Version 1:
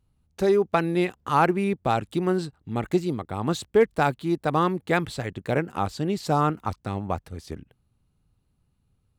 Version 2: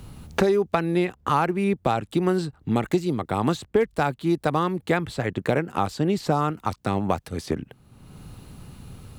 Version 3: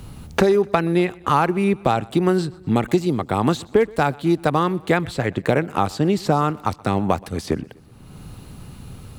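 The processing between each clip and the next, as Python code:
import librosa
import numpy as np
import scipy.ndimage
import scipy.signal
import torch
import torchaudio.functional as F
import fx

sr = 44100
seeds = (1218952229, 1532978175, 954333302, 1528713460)

y1 = fx.band_squash(x, sr, depth_pct=100)
y2 = fx.echo_feedback(y1, sr, ms=125, feedback_pct=55, wet_db=-24)
y2 = F.gain(torch.from_numpy(y2), 4.0).numpy()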